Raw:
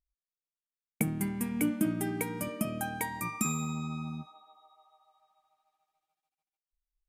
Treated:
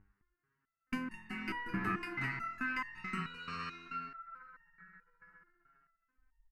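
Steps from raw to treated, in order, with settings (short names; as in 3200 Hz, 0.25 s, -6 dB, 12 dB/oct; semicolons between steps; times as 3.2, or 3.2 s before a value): minimum comb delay 0.67 ms; tilt +2 dB/oct; treble ducked by the level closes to 1800 Hz, closed at -28.5 dBFS; upward compressor, threshold -39 dBFS; low-pass opened by the level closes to 560 Hz, open at -33.5 dBFS; EQ curve 890 Hz 0 dB, 2500 Hz +10 dB, 6400 Hz -8 dB; speed mistake 44.1 kHz file played as 48 kHz; fixed phaser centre 1400 Hz, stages 4; echo 0.21 s -7 dB; stepped resonator 4.6 Hz 100–910 Hz; gain +14 dB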